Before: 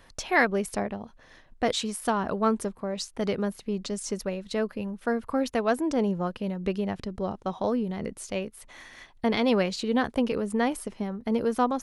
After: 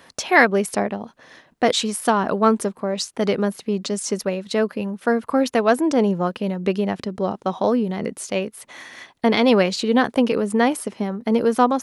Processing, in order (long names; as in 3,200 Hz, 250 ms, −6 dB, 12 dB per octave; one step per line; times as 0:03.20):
high-pass filter 160 Hz 12 dB per octave
level +8 dB